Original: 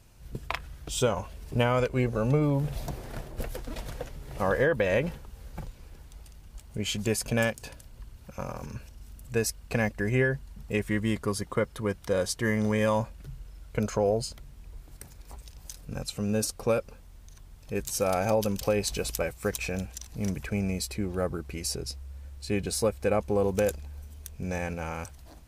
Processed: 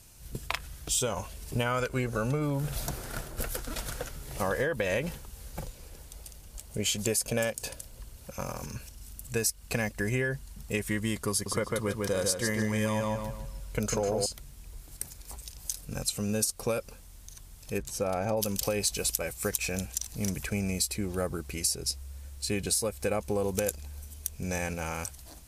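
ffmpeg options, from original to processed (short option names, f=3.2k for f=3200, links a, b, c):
-filter_complex "[0:a]asettb=1/sr,asplit=3[a][b][c];[a]atrim=end=1.664[d];[b]atrim=start=1.66:end=4.22,asetpts=PTS-STARTPTS,afade=t=in:d=0.004:c=qsin,afade=t=out:st=2.556:d=0.004:c=qsin,equalizer=f=1.4k:t=o:w=0.36:g=9[e];[c]atrim=start=4.216[f];[d][e]acrossfade=d=0.004:c1=hsin:c2=qsin[g];[g][f]acrossfade=d=0.004:c1=qsin:c2=hsin,asettb=1/sr,asplit=3[h][i][j];[h]atrim=end=5.564[k];[i]atrim=start=5.56:end=8.34,asetpts=PTS-STARTPTS,afade=t=in:d=0.004:c=qsin,afade=t=out:st=2.776:d=0.004:c=qsin,equalizer=f=530:t=o:w=0.85:g=6.5[l];[j]atrim=start=8.336[m];[k][l]acrossfade=d=0.004:c1=hsin:c2=qsin[n];[n][m]acrossfade=d=0.004:c1=qsin:c2=hsin,asettb=1/sr,asplit=3[o][p][q];[o]atrim=end=11.314[r];[p]atrim=start=11.31:end=14.26,asetpts=PTS-STARTPTS,afade=t=in:d=0.004:c=qsin,afade=t=out:st=2.946:d=0.004:c=qsin,asplit=2[s][t];[t]adelay=149,lowpass=f=4k:p=1,volume=-3dB,asplit=2[u][v];[v]adelay=149,lowpass=f=4k:p=1,volume=0.35,asplit=2[w][x];[x]adelay=149,lowpass=f=4k:p=1,volume=0.35,asplit=2[y][z];[z]adelay=149,lowpass=f=4k:p=1,volume=0.35,asplit=2[aa][ab];[ab]adelay=149,lowpass=f=4k:p=1,volume=0.35[ac];[s][u][w][y][aa][ac]amix=inputs=6:normalize=0,atrim=end_sample=130095[ad];[q]atrim=start=14.256[ae];[r][ad]acrossfade=d=0.004:c1=hsin:c2=qsin[af];[af][ae]acrossfade=d=0.004:c1=qsin:c2=hsin,asplit=3[ag][ah][ai];[ag]afade=t=out:st=17.77:d=0.02[aj];[ah]lowpass=f=1.2k:p=1,afade=t=in:st=17.77:d=0.02,afade=t=out:st=18.36:d=0.02[ak];[ai]afade=t=in:st=18.36:d=0.02[al];[aj][ak][al]amix=inputs=3:normalize=0,lowpass=11k,aemphasis=mode=production:type=75fm,acompressor=threshold=-25dB:ratio=6"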